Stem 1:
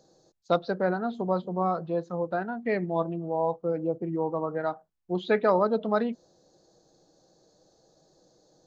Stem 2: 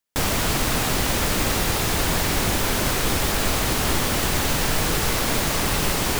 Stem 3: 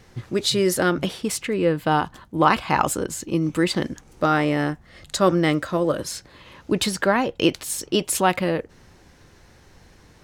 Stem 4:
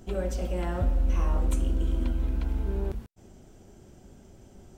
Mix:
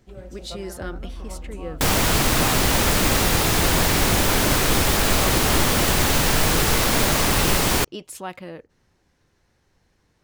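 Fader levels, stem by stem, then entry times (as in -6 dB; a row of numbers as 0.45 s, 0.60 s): -16.0 dB, +3.0 dB, -14.0 dB, -10.5 dB; 0.00 s, 1.65 s, 0.00 s, 0.00 s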